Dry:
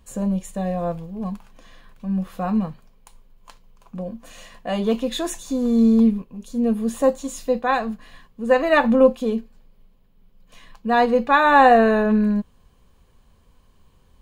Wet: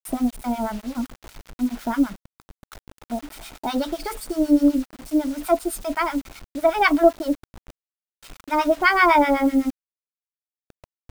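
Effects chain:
in parallel at −2 dB: downward compressor 4 to 1, threshold −26 dBFS, peak gain reduction 15 dB
on the sum: two-band tremolo in antiphase 6.2 Hz, depth 100%, crossover 730 Hz
change of speed 1.28×
bit reduction 7 bits
level +1 dB

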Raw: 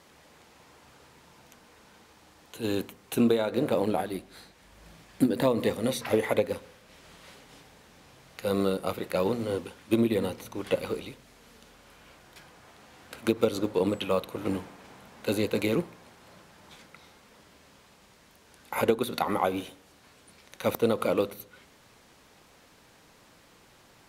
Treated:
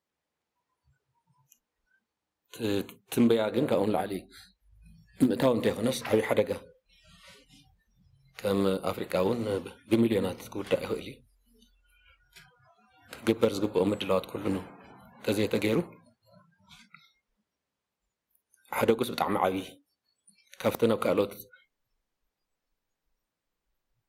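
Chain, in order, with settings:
noise reduction from a noise print of the clip's start 30 dB
highs frequency-modulated by the lows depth 0.2 ms

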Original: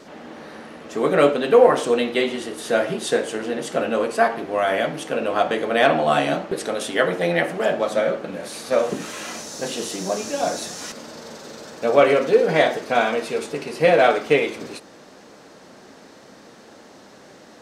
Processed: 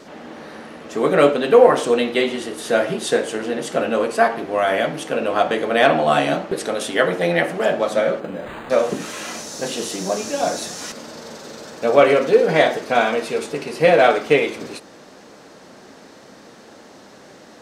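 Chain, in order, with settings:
0:08.20–0:08.70: linearly interpolated sample-rate reduction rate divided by 8×
level +2 dB

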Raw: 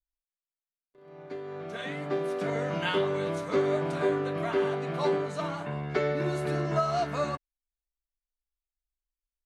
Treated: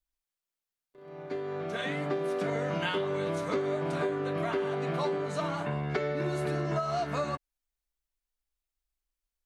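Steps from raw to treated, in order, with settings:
downward compressor, threshold −31 dBFS, peak gain reduction 9.5 dB
level +3.5 dB

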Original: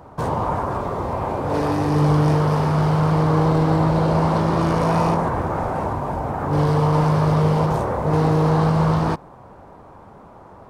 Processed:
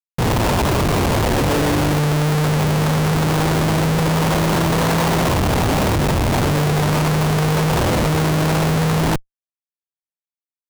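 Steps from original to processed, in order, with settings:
automatic gain control gain up to 3.5 dB
comparator with hysteresis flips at −22 dBFS

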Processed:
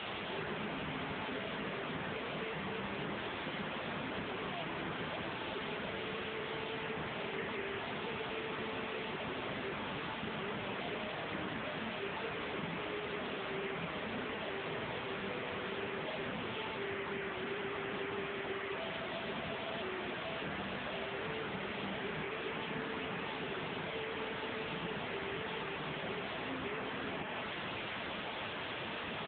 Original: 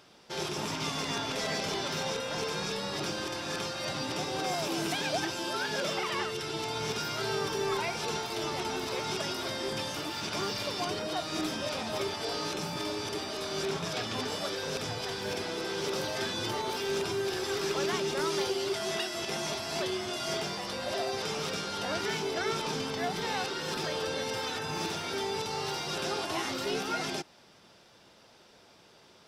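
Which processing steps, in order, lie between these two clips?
linear delta modulator 16 kbit/s, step −49.5 dBFS
comb filter 4.6 ms, depth 60%
downward compressor 8 to 1, threshold −48 dBFS, peak gain reduction 17 dB
in parallel at −6 dB: sine wavefolder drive 19 dB, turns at −38.5 dBFS
on the sum: level +8 dB
AMR narrowband 7.95 kbit/s 8,000 Hz

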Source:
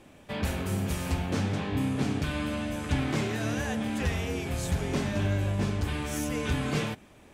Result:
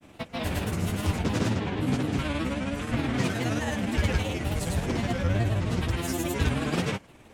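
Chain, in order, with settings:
granular cloud 100 ms, grains 19 per second, pitch spread up and down by 3 semitones
level +3.5 dB

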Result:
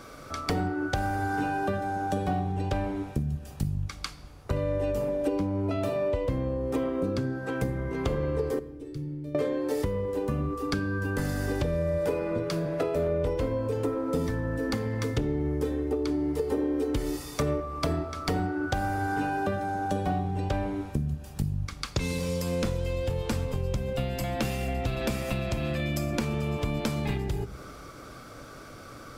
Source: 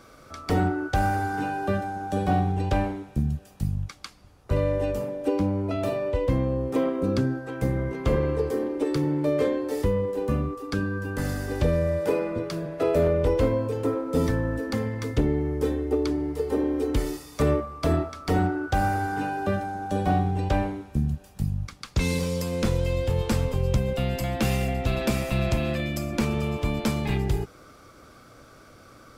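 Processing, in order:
0:08.59–0:09.35: guitar amp tone stack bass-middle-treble 10-0-1
downward compressor, threshold −31 dBFS, peak gain reduction 13 dB
rectangular room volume 1,200 cubic metres, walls mixed, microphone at 0.32 metres
level +5 dB

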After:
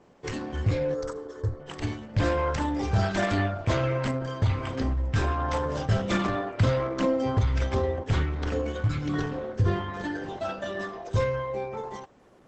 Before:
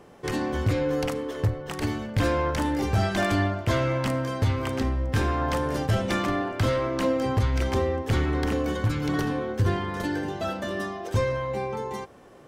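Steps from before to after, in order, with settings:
0:00.94–0:01.60: phaser with its sweep stopped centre 700 Hz, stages 6
noise reduction from a noise print of the clip's start 6 dB
0:06.09–0:07.05: dynamic equaliser 150 Hz, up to +5 dB, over −39 dBFS, Q 1
Opus 12 kbit/s 48,000 Hz

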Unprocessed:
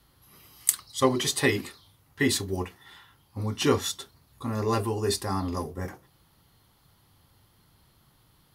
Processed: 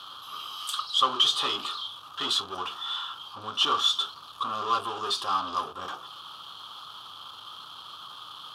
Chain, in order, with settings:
power curve on the samples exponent 0.5
pair of resonant band-passes 2,000 Hz, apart 1.4 octaves
level +2 dB

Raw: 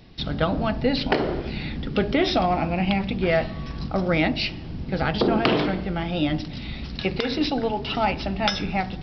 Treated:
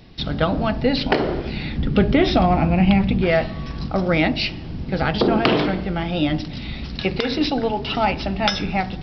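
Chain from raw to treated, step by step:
0:01.78–0:03.22: bass and treble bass +7 dB, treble −5 dB
level +3 dB

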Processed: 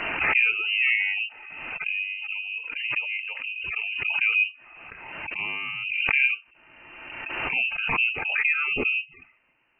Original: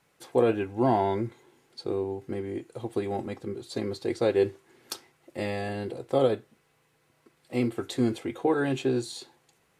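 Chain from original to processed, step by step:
gate on every frequency bin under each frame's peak −25 dB strong
voice inversion scrambler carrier 2,900 Hz
background raised ahead of every attack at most 33 dB per second

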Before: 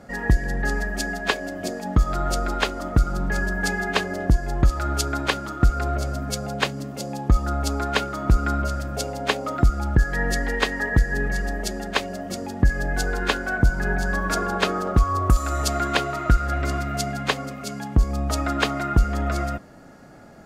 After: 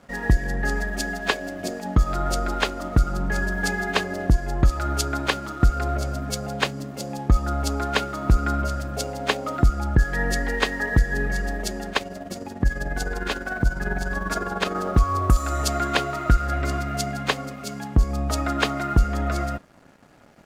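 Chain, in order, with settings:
dead-zone distortion −48.5 dBFS
0:11.92–0:14.75: amplitude tremolo 20 Hz, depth 58%

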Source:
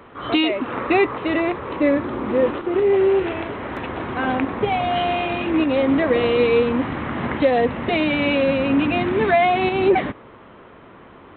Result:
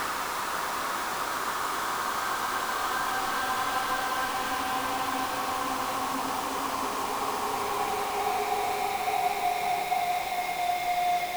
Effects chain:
band-pass filter sweep 1,600 Hz → 370 Hz, 0:03.33–0:07.19
log-companded quantiser 2 bits
extreme stretch with random phases 11×, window 0.50 s, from 0:03.90
level −3 dB

